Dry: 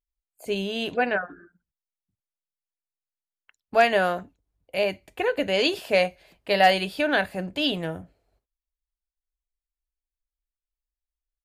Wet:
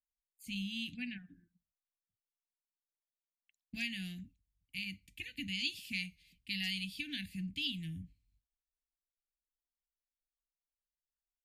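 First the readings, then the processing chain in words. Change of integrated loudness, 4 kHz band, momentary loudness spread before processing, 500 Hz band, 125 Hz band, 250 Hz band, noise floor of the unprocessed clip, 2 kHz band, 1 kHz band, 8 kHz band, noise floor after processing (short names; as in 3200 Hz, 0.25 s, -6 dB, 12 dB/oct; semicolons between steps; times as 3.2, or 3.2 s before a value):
-15.5 dB, -9.5 dB, 14 LU, under -40 dB, -8.0 dB, -11.5 dB, under -85 dBFS, -15.5 dB, under -40 dB, -9.0 dB, under -85 dBFS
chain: inverse Chebyshev band-stop 400–1400 Hz, stop band 40 dB; compressor 2:1, threshold -38 dBFS, peak gain reduction 9.5 dB; three-band expander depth 40%; gain -3 dB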